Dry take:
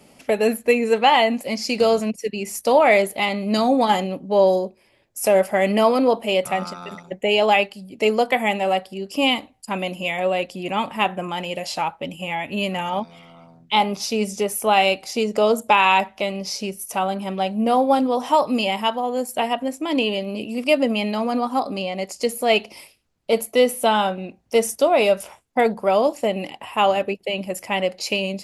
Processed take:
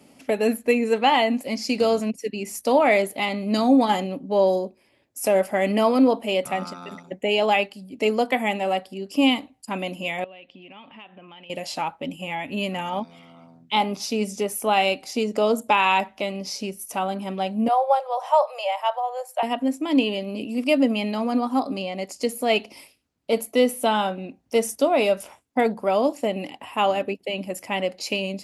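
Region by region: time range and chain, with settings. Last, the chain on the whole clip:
10.24–11.5 ladder low-pass 3500 Hz, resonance 55% + compressor 4:1, threshold -39 dBFS
17.68–19.43 steep high-pass 550 Hz 72 dB/oct + tilt shelf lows +7.5 dB, about 1200 Hz
whole clip: HPF 52 Hz; bell 270 Hz +8.5 dB 0.33 oct; gain -3.5 dB

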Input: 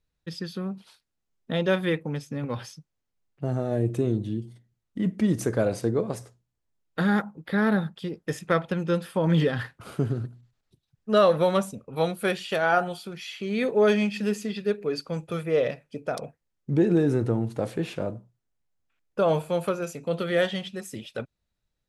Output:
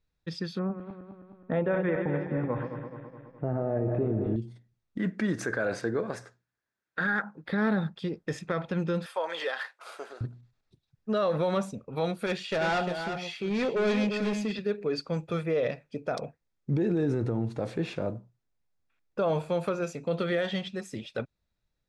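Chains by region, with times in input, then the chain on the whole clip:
0.59–4.36 regenerating reverse delay 0.105 s, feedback 75%, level -9.5 dB + LPF 2100 Hz 24 dB/oct + bell 700 Hz +4 dB 1.6 oct
4.98–7.43 HPF 260 Hz 6 dB/oct + bell 1600 Hz +14 dB 0.5 oct
9.06–10.21 HPF 570 Hz 24 dB/oct + high shelf 9000 Hz +10.5 dB
12.26–14.59 hard clip -24.5 dBFS + echo 0.35 s -7.5 dB
whole clip: LPF 6000 Hz 12 dB/oct; notch 3000 Hz, Q 12; limiter -19.5 dBFS

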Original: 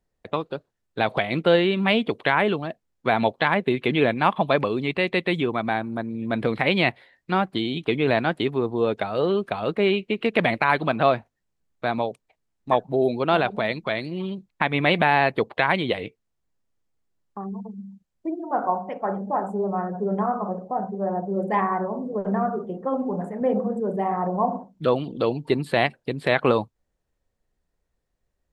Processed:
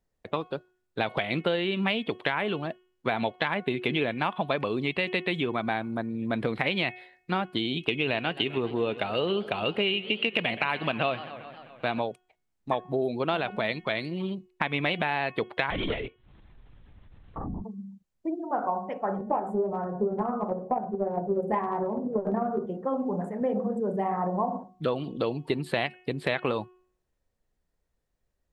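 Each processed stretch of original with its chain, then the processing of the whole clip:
7.8–12 bell 2800 Hz +12 dB 0.25 oct + warbling echo 0.131 s, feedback 70%, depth 213 cents, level -19 dB
15.7–17.64 upward compressor, threshold -32 dBFS + hard clip -21 dBFS + LPC vocoder at 8 kHz whisper
19.18–22.66 bell 3500 Hz -14 dB 2.3 oct + doubler 13 ms -5 dB + transient shaper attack +11 dB, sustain +3 dB
whole clip: de-hum 365.5 Hz, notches 9; dynamic EQ 2900 Hz, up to +5 dB, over -37 dBFS, Q 1.6; compressor, threshold -21 dBFS; gain -2 dB

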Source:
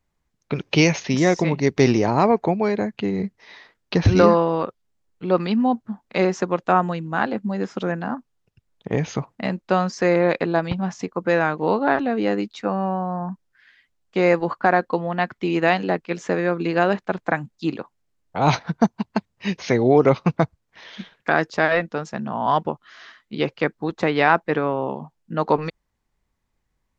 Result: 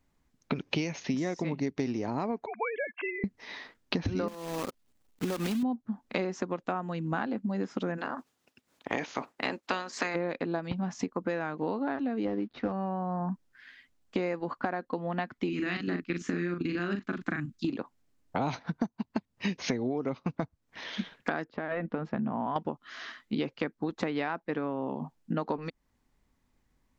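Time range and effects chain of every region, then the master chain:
2.46–3.24 sine-wave speech + HPF 1000 Hz + comb 1.9 ms, depth 67%
4.28–5.63 block floating point 3-bit + compressor, threshold -25 dBFS
7.97–10.14 spectral limiter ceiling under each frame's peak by 18 dB + HPF 370 Hz 6 dB/oct + tremolo 4 Hz, depth 55%
12.25–12.72 CVSD 32 kbps + LPF 2700 Hz + bell 310 Hz +4 dB 2.7 oct
15.49–17.7 level quantiser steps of 12 dB + band shelf 670 Hz -14.5 dB 1.3 oct + doubler 40 ms -4.5 dB
21.44–22.56 compressor 4:1, threshold -24 dBFS + air absorption 450 m
whole clip: bell 260 Hz +8 dB 0.46 oct; compressor 16:1, threshold -29 dBFS; gain +1.5 dB

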